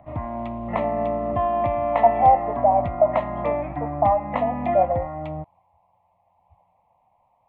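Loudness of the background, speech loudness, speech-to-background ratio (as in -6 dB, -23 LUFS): -26.5 LUFS, -21.5 LUFS, 5.0 dB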